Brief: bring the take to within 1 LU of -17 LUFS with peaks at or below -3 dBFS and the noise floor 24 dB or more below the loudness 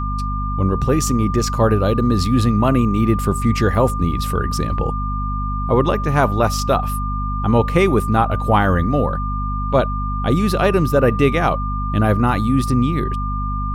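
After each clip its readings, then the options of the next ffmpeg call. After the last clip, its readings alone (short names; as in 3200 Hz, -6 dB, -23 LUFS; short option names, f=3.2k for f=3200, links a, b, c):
hum 50 Hz; harmonics up to 250 Hz; hum level -20 dBFS; steady tone 1200 Hz; tone level -25 dBFS; loudness -18.5 LUFS; peak -1.5 dBFS; loudness target -17.0 LUFS
-> -af "bandreject=f=50:t=h:w=6,bandreject=f=100:t=h:w=6,bandreject=f=150:t=h:w=6,bandreject=f=200:t=h:w=6,bandreject=f=250:t=h:w=6"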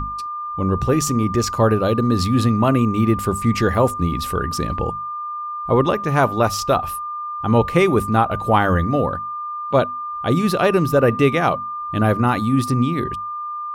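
hum none; steady tone 1200 Hz; tone level -25 dBFS
-> -af "bandreject=f=1.2k:w=30"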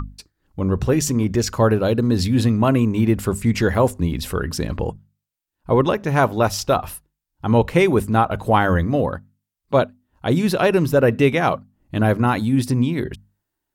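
steady tone none; loudness -19.5 LUFS; peak -3.5 dBFS; loudness target -17.0 LUFS
-> -af "volume=2.5dB,alimiter=limit=-3dB:level=0:latency=1"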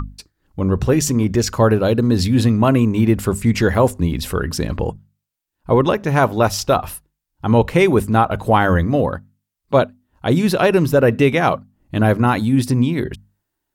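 loudness -17.0 LUFS; peak -3.0 dBFS; noise floor -79 dBFS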